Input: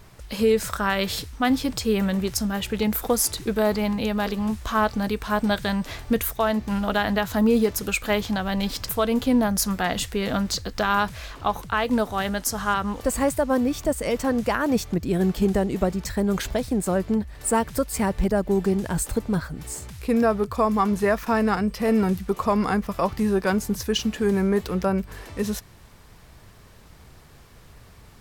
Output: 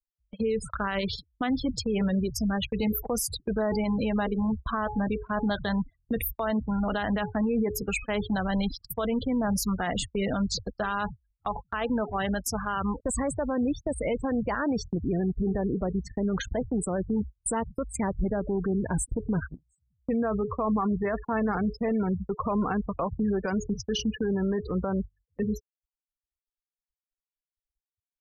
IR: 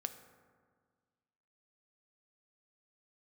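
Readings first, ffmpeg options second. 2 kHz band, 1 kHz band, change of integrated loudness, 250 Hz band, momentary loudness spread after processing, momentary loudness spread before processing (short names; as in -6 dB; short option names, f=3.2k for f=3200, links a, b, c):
-6.5 dB, -6.5 dB, -5.0 dB, -4.0 dB, 4 LU, 5 LU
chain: -af "bandreject=f=422.1:t=h:w=4,bandreject=f=844.2:t=h:w=4,bandreject=f=1.2663k:t=h:w=4,bandreject=f=1.6884k:t=h:w=4,bandreject=f=2.1105k:t=h:w=4,bandreject=f=2.5326k:t=h:w=4,bandreject=f=2.9547k:t=h:w=4,bandreject=f=3.3768k:t=h:w=4,bandreject=f=3.7989k:t=h:w=4,bandreject=f=4.221k:t=h:w=4,bandreject=f=4.6431k:t=h:w=4,bandreject=f=5.0652k:t=h:w=4,bandreject=f=5.4873k:t=h:w=4,bandreject=f=5.9094k:t=h:w=4,bandreject=f=6.3315k:t=h:w=4,bandreject=f=6.7536k:t=h:w=4,bandreject=f=7.1757k:t=h:w=4,bandreject=f=7.5978k:t=h:w=4,bandreject=f=8.0199k:t=h:w=4,bandreject=f=8.442k:t=h:w=4,bandreject=f=8.8641k:t=h:w=4,bandreject=f=9.2862k:t=h:w=4,bandreject=f=9.7083k:t=h:w=4,bandreject=f=10.1304k:t=h:w=4,bandreject=f=10.5525k:t=h:w=4,bandreject=f=10.9746k:t=h:w=4,bandreject=f=11.3967k:t=h:w=4,bandreject=f=11.8188k:t=h:w=4,bandreject=f=12.2409k:t=h:w=4,bandreject=f=12.663k:t=h:w=4,bandreject=f=13.0851k:t=h:w=4,afftfilt=real='re*gte(hypot(re,im),0.0562)':imag='im*gte(hypot(re,im),0.0562)':win_size=1024:overlap=0.75,agate=range=-34dB:threshold=-30dB:ratio=16:detection=peak,alimiter=limit=-20dB:level=0:latency=1:release=27"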